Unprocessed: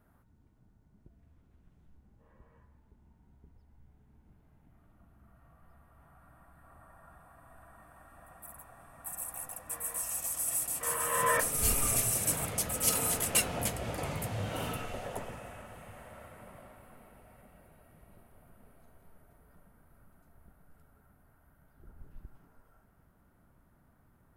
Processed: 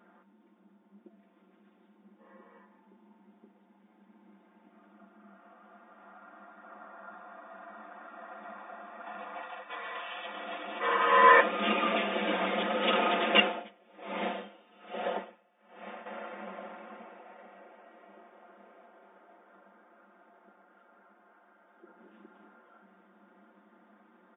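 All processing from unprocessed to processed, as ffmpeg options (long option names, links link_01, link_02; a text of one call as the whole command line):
ffmpeg -i in.wav -filter_complex "[0:a]asettb=1/sr,asplit=3[link_01][link_02][link_03];[link_01]atrim=end=9.424[link_04];[link_02]atrim=start=9.42:end=10.27,asetpts=PTS-STARTPTS,afade=type=in:duration=0.004:curve=qsin,afade=type=out:start_time=0.846:duration=0.004:curve=qsin,highpass=frequency=710:poles=1,agate=range=-33dB:threshold=-52dB:ratio=3:release=100:detection=peak,highshelf=frequency=4400:width_type=q:width=3:gain=-6.5[link_05];[link_03]atrim=start=10.266[link_06];[link_04][link_05]acrossfade=duration=0.004:curve1=hsin:curve2=qsin[link_07];[link_07][link_06]acrossfade=duration=0.004:curve1=qsin:curve2=hsin,asettb=1/sr,asplit=3[link_08][link_09][link_10];[link_08]atrim=end=13.414[link_11];[link_09]atrim=start=13.41:end=16.06,asetpts=PTS-STARTPTS,afade=type=in:duration=0.004:curve=qsin,afade=type=out:start_time=2.646:duration=0.004:curve=qsin,aeval=exprs='if(lt(val(0),0),0.708*val(0),val(0))':channel_layout=same,aeval=exprs='val(0)*pow(10,-32*(0.5-0.5*cos(2*PI*1.2*n/s))/20)':channel_layout=same[link_12];[link_10]atrim=start=16.056[link_13];[link_11][link_12]acrossfade=duration=0.004:curve1=hsin:curve2=qsin[link_14];[link_14][link_13]acrossfade=duration=0.004:curve1=qsin:curve2=hsin,asettb=1/sr,asplit=3[link_15][link_16][link_17];[link_15]atrim=end=17.044[link_18];[link_16]atrim=start=17.04:end=21.98,asetpts=PTS-STARTPTS,afade=type=in:duration=0.004:curve=qsin,afade=type=out:start_time=4.936:duration=0.004:curve=qsin,highpass=320,highshelf=frequency=3800:gain=-7[link_19];[link_17]atrim=start=21.976[link_20];[link_18][link_19]acrossfade=duration=0.004:curve1=hsin:curve2=qsin[link_21];[link_21][link_20]acrossfade=duration=0.004:curve1=qsin:curve2=hsin,afftfilt=real='re*between(b*sr/4096,190,3700)':imag='im*between(b*sr/4096,190,3700)':win_size=4096:overlap=0.75,aecho=1:1:5.7:0.79,volume=8dB" out.wav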